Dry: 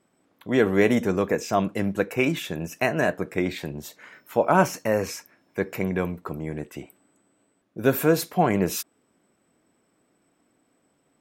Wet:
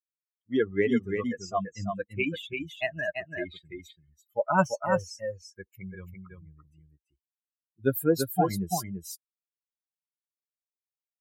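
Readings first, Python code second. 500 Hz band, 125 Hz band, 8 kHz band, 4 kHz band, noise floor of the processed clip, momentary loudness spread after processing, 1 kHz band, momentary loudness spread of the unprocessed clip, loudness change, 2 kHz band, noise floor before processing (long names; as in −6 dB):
−6.0 dB, −6.0 dB, −5.5 dB, −5.5 dB, below −85 dBFS, 19 LU, −4.5 dB, 15 LU, −5.0 dB, −5.0 dB, −69 dBFS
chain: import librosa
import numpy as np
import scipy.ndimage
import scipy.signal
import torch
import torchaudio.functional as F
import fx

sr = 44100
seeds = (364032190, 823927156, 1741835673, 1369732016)

y = fx.bin_expand(x, sr, power=3.0)
y = y + 10.0 ** (-5.5 / 20.0) * np.pad(y, (int(338 * sr / 1000.0), 0))[:len(y)]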